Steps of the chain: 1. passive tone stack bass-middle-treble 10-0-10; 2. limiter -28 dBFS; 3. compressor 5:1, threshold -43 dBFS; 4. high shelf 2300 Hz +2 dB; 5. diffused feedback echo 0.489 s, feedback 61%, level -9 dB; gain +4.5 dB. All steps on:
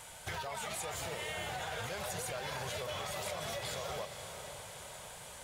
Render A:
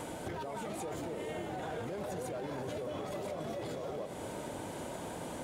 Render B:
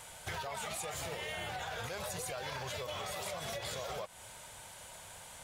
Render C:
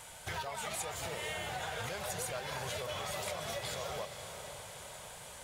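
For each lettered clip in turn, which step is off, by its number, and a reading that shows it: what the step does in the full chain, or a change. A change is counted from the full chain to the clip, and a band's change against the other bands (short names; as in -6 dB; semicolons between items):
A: 1, 250 Hz band +14.5 dB; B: 5, echo-to-direct -7.0 dB to none; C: 2, mean gain reduction 1.5 dB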